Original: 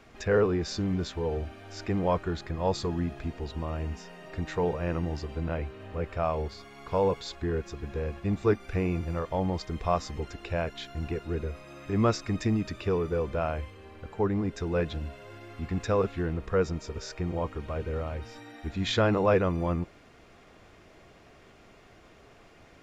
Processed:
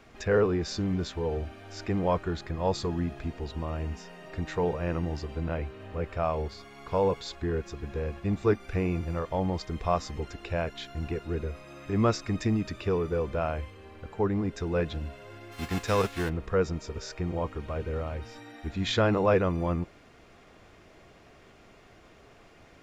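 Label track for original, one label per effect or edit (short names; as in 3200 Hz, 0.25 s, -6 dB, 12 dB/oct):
15.510000	16.280000	spectral whitening exponent 0.6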